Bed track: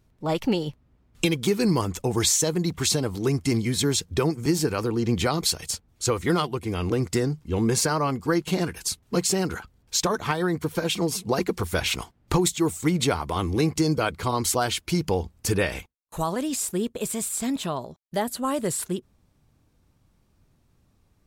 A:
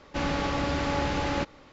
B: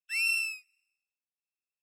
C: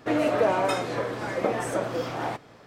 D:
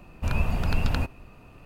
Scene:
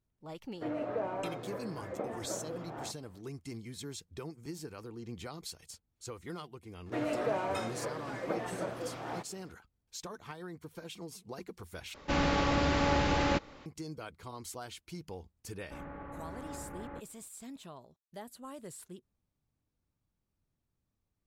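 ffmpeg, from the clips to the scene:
-filter_complex "[3:a]asplit=2[a][b];[1:a]asplit=2[c][d];[0:a]volume=-20dB[e];[a]lowpass=f=1.1k:p=1[f];[d]lowpass=f=1.8k:w=0.5412,lowpass=f=1.8k:w=1.3066[g];[e]asplit=2[h][i];[h]atrim=end=11.944[j];[c]atrim=end=1.72,asetpts=PTS-STARTPTS,volume=-0.5dB[k];[i]atrim=start=13.656[l];[f]atrim=end=2.66,asetpts=PTS-STARTPTS,volume=-11.5dB,afade=t=in:d=0.004:c=hsin,afade=t=out:st=2.656:d=0.004:c=hsin,adelay=550[m];[b]atrim=end=2.66,asetpts=PTS-STARTPTS,volume=-10dB,afade=t=in:d=0.004:c=hsin,afade=t=out:st=2.656:d=0.004:c=hsin,adelay=6860[n];[g]atrim=end=1.72,asetpts=PTS-STARTPTS,volume=-16.5dB,afade=t=in:d=0.004:c=hsin,afade=t=out:st=1.716:d=0.004:c=hsin,adelay=686196S[o];[j][k]acrossfade=d=0.004:c1=hsin:c2=hsin[p];[p][l]acrossfade=d=0.004:c1=hsin:c2=hsin[q];[q][m][n][o]amix=inputs=4:normalize=0"

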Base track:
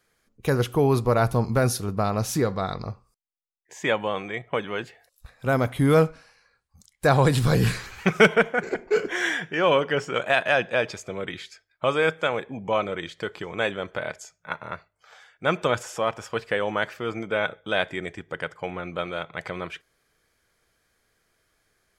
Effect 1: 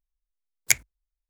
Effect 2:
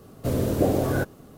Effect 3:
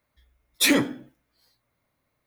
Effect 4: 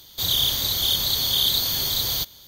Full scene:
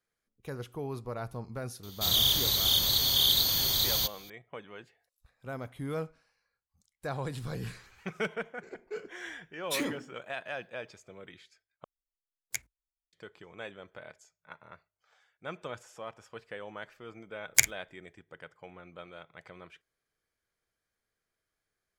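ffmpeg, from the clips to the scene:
-filter_complex "[1:a]asplit=2[a][b];[0:a]volume=-17dB[c];[b]asplit=2[d][e];[e]adelay=47,volume=-12dB[f];[d][f]amix=inputs=2:normalize=0[g];[c]asplit=2[h][i];[h]atrim=end=11.844[j];[a]atrim=end=1.29,asetpts=PTS-STARTPTS,volume=-15.5dB[k];[i]atrim=start=13.126[l];[4:a]atrim=end=2.47,asetpts=PTS-STARTPTS,volume=-3.5dB,afade=t=in:d=0.004:c=hsin,afade=t=out:st=2.466:d=0.004:c=hsin,adelay=1830[m];[3:a]atrim=end=2.26,asetpts=PTS-STARTPTS,volume=-13dB,afade=t=in:d=0.004:c=hsin,afade=t=out:st=2.256:d=0.004:c=hsin,adelay=9100[n];[g]atrim=end=1.29,asetpts=PTS-STARTPTS,volume=-1.5dB,afade=t=in:d=0.004:c=hsin,afade=t=out:st=1.286:d=0.004:c=hsin,adelay=16880[o];[j][k]acrossfade=d=0.004:c1=hsin:c2=hsin[p];[p][l]acrossfade=d=0.004:c1=hsin:c2=hsin[q];[q][m][n][o]amix=inputs=4:normalize=0"

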